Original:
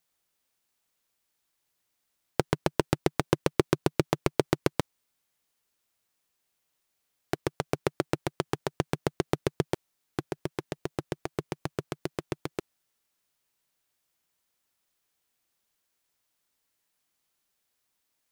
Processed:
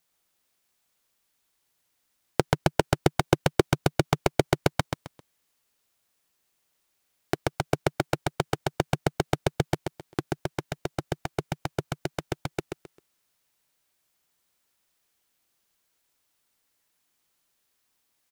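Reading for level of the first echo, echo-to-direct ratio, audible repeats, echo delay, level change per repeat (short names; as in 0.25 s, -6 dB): -5.5 dB, -5.0 dB, 3, 0.132 s, -11.5 dB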